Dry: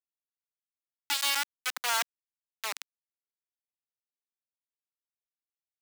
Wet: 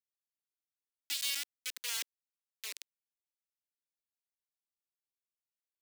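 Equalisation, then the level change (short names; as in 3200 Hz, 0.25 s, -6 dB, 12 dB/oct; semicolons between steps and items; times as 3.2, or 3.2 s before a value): low shelf 350 Hz -9.5 dB; bell 1300 Hz -11.5 dB 0.89 oct; fixed phaser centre 320 Hz, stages 4; -4.5 dB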